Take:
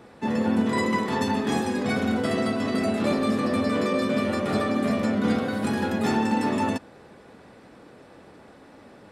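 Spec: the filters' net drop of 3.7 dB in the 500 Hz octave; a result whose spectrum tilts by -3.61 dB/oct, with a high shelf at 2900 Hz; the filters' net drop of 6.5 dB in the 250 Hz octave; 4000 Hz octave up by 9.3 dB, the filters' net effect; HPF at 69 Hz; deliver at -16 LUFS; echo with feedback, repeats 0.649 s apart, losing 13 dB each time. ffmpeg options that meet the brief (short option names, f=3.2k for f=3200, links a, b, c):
-af "highpass=69,equalizer=f=250:t=o:g=-7,equalizer=f=500:t=o:g=-3,highshelf=f=2.9k:g=3.5,equalizer=f=4k:t=o:g=8.5,aecho=1:1:649|1298|1947:0.224|0.0493|0.0108,volume=10.5dB"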